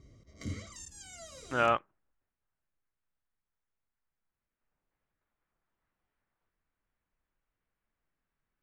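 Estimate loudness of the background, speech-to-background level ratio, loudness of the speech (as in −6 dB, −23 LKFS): −45.5 LKFS, 15.0 dB, −30.5 LKFS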